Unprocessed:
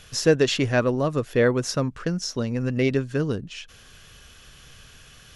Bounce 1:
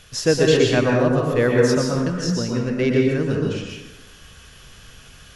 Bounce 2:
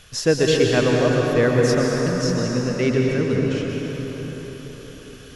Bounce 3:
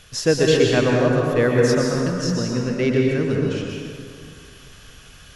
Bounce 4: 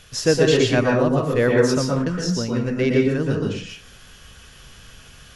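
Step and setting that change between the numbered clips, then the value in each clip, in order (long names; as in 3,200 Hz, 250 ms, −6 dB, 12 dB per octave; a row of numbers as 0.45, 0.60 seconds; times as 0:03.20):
dense smooth reverb, RT60: 1.1, 5.3, 2.3, 0.52 seconds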